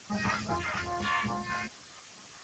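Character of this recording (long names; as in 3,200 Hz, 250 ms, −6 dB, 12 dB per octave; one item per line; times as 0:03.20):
phaser sweep stages 2, 2.4 Hz, lowest notch 280–2,600 Hz
a quantiser's noise floor 8 bits, dither triangular
Speex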